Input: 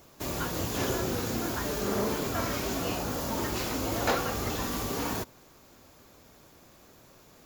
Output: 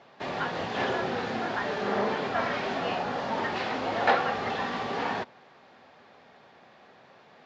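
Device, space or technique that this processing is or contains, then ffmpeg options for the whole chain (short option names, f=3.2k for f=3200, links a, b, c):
kitchen radio: -af "highpass=200,equalizer=f=310:t=q:w=4:g=-9,equalizer=f=780:t=q:w=4:g=7,equalizer=f=1.8k:t=q:w=4:g=6,lowpass=f=3.9k:w=0.5412,lowpass=f=3.9k:w=1.3066,volume=2.5dB"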